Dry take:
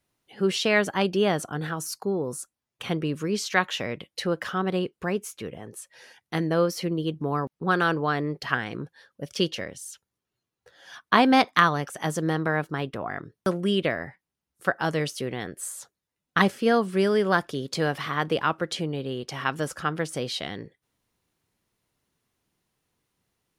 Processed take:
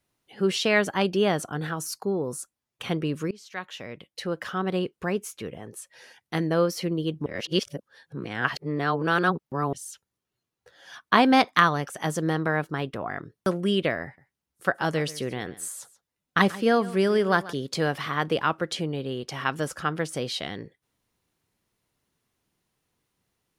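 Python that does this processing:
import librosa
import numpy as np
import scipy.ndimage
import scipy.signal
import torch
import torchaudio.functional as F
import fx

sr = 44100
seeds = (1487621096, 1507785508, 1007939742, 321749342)

y = fx.echo_single(x, sr, ms=136, db=-18.0, at=(14.04, 17.53))
y = fx.edit(y, sr, fx.fade_in_from(start_s=3.31, length_s=1.53, floor_db=-23.5),
    fx.reverse_span(start_s=7.26, length_s=2.47), tone=tone)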